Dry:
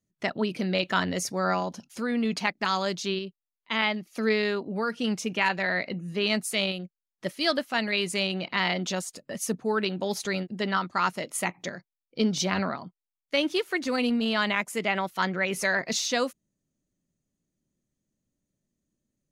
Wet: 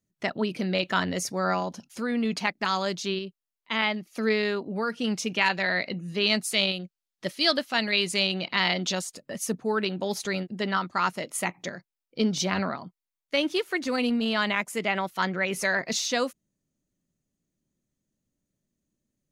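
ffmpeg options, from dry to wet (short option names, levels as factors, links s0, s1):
-filter_complex "[0:a]asettb=1/sr,asplit=3[s0][s1][s2];[s0]atrim=end=5.144[s3];[s1]atrim=start=5.14:end=9.07,asetpts=PTS-STARTPTS,afade=t=in:d=0.004:c=qsin,afade=t=out:st=3.926:d=0.004:c=qsin,equalizer=f=4200:w=1:g=5.5[s4];[s2]atrim=start=9.066[s5];[s3][s4]acrossfade=d=0.004:c1=hsin:c2=qsin[s6];[s6][s5]acrossfade=d=0.004:c1=qsin:c2=hsin"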